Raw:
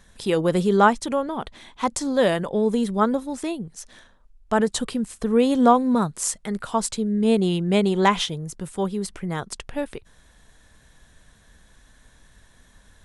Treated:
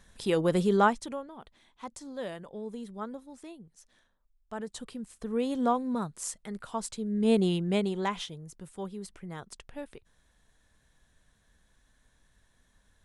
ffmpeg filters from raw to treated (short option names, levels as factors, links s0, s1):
-af "volume=2.82,afade=t=out:st=0.69:d=0.59:silence=0.223872,afade=t=in:st=4.57:d=0.9:silence=0.446684,afade=t=in:st=6.97:d=0.4:silence=0.446684,afade=t=out:st=7.37:d=0.69:silence=0.354813"